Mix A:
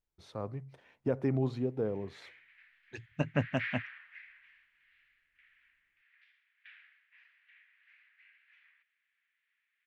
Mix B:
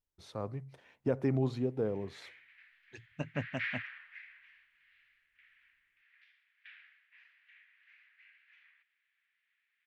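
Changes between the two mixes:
second voice −6.5 dB
master: add high-shelf EQ 4,900 Hz +6 dB

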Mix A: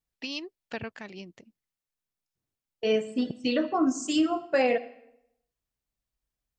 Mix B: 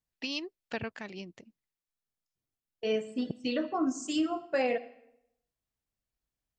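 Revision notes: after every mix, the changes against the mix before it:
second voice −5.0 dB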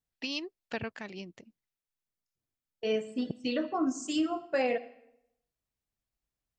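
nothing changed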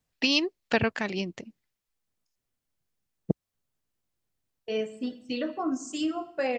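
first voice +11.5 dB
second voice: entry +1.85 s

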